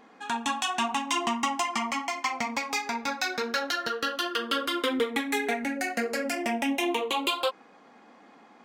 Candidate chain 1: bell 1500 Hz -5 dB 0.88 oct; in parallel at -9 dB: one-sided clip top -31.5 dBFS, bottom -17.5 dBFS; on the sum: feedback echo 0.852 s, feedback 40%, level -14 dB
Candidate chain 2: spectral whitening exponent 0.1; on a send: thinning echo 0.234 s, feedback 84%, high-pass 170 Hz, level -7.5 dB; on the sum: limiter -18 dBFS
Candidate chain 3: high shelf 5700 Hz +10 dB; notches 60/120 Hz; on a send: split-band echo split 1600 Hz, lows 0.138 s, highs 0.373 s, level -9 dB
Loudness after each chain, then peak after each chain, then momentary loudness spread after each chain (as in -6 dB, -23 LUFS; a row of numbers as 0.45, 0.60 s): -27.5, -27.5, -26.5 LUFS; -12.5, -18.0, -11.0 dBFS; 7, 3, 7 LU